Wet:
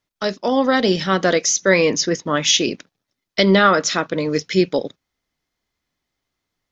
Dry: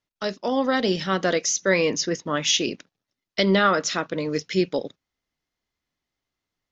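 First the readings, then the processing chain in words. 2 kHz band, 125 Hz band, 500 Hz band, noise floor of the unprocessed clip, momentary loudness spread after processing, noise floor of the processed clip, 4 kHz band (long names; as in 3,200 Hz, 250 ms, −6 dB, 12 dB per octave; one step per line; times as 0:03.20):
+5.5 dB, +5.5 dB, +5.5 dB, below −85 dBFS, 11 LU, −81 dBFS, +5.0 dB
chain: notch filter 2,800 Hz, Q 22
level +5.5 dB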